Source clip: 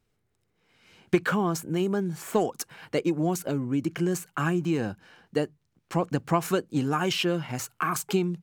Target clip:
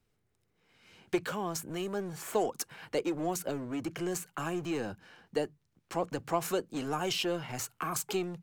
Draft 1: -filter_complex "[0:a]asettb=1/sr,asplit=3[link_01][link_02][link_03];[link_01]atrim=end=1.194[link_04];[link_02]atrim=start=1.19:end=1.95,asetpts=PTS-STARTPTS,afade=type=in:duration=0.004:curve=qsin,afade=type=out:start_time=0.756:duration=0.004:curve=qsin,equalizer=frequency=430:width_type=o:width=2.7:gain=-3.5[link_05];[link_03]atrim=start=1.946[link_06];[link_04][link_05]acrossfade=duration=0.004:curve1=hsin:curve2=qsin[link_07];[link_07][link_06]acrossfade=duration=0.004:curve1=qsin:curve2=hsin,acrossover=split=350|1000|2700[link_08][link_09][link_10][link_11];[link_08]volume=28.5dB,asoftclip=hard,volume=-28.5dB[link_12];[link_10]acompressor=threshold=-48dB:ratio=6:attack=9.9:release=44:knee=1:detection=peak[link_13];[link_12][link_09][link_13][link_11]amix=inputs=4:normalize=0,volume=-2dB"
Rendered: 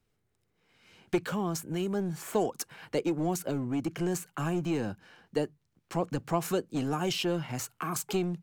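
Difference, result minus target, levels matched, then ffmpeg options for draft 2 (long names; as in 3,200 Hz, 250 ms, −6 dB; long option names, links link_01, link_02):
gain into a clipping stage and back: distortion −6 dB
-filter_complex "[0:a]asettb=1/sr,asplit=3[link_01][link_02][link_03];[link_01]atrim=end=1.194[link_04];[link_02]atrim=start=1.19:end=1.95,asetpts=PTS-STARTPTS,afade=type=in:duration=0.004:curve=qsin,afade=type=out:start_time=0.756:duration=0.004:curve=qsin,equalizer=frequency=430:width_type=o:width=2.7:gain=-3.5[link_05];[link_03]atrim=start=1.946[link_06];[link_04][link_05]acrossfade=duration=0.004:curve1=hsin:curve2=qsin[link_07];[link_07][link_06]acrossfade=duration=0.004:curve1=qsin:curve2=hsin,acrossover=split=350|1000|2700[link_08][link_09][link_10][link_11];[link_08]volume=39.5dB,asoftclip=hard,volume=-39.5dB[link_12];[link_10]acompressor=threshold=-48dB:ratio=6:attack=9.9:release=44:knee=1:detection=peak[link_13];[link_12][link_09][link_13][link_11]amix=inputs=4:normalize=0,volume=-2dB"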